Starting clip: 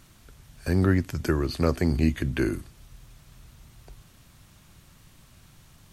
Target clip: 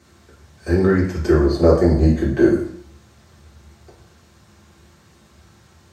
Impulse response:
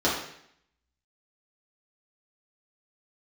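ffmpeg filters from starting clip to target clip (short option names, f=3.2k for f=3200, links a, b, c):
-filter_complex "[0:a]asettb=1/sr,asplit=3[a][b][c];[a]atrim=end=1.314[d];[b]atrim=start=1.31:end=2.59,asetpts=PTS-STARTPTS,afade=t=in:d=0.004:c=qsin,afade=t=out:st=1.276:d=0.004:c=qsin,equalizer=f=160:t=o:w=0.67:g=6,equalizer=f=630:t=o:w=0.67:g=9,equalizer=f=2.5k:t=o:w=0.67:g=-10[e];[c]atrim=start=2.586[f];[d][e]acrossfade=d=0.004:c1=hsin:c2=qsin[g];[g][f]acrossfade=d=0.004:c1=qsin:c2=hsin[h];[1:a]atrim=start_sample=2205,asetrate=52920,aresample=44100[i];[h][i]afir=irnorm=-1:irlink=0,volume=-8dB"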